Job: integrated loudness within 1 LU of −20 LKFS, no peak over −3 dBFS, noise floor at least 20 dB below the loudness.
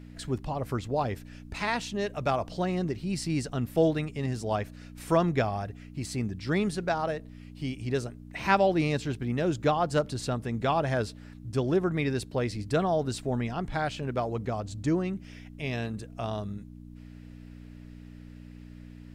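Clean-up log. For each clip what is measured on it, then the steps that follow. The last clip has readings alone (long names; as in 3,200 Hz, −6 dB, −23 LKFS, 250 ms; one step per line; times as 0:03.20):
mains hum 60 Hz; hum harmonics up to 300 Hz; level of the hum −44 dBFS; integrated loudness −30.0 LKFS; sample peak −10.5 dBFS; target loudness −20.0 LKFS
→ hum removal 60 Hz, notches 5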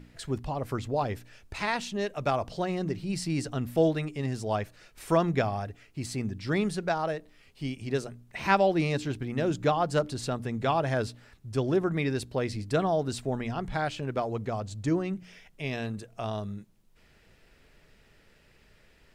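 mains hum none found; integrated loudness −30.0 LKFS; sample peak −10.5 dBFS; target loudness −20.0 LKFS
→ level +10 dB
brickwall limiter −3 dBFS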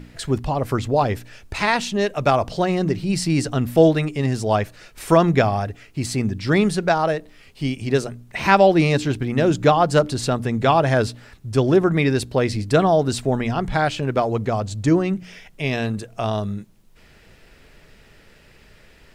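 integrated loudness −20.5 LKFS; sample peak −3.0 dBFS; background noise floor −51 dBFS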